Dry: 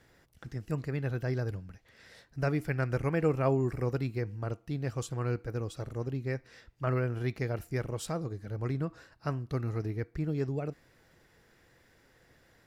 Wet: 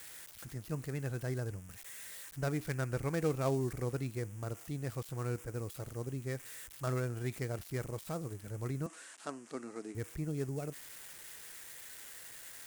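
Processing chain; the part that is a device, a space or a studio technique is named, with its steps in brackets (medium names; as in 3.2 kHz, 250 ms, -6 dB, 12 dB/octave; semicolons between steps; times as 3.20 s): budget class-D amplifier (dead-time distortion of 0.11 ms; zero-crossing glitches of -29 dBFS); 8.86–9.95 s: elliptic band-pass 230–8800 Hz, stop band 40 dB; trim -5 dB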